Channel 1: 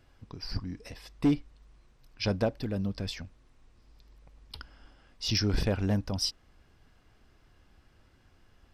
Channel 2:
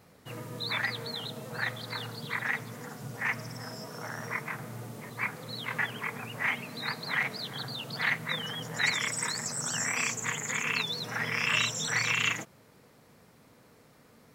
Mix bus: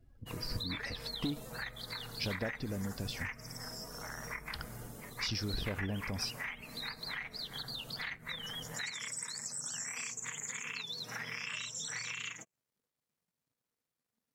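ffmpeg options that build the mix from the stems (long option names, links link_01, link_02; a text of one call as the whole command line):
ffmpeg -i stem1.wav -i stem2.wav -filter_complex "[0:a]acompressor=threshold=-35dB:ratio=6,volume=0.5dB[link_01];[1:a]highshelf=frequency=3300:gain=11,acompressor=threshold=-32dB:ratio=6,aeval=exprs='sgn(val(0))*max(abs(val(0))-0.00178,0)':channel_layout=same,volume=-5.5dB[link_02];[link_01][link_02]amix=inputs=2:normalize=0,afftdn=noise_reduction=19:noise_floor=-58" out.wav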